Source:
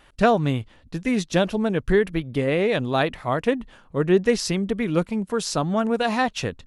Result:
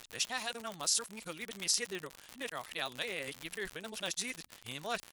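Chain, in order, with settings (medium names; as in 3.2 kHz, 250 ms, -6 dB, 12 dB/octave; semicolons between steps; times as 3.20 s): reverse the whole clip; recorder AGC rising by 10 dB/s; pre-emphasis filter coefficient 0.97; crackle 76 per s -31 dBFS; tempo 1.3×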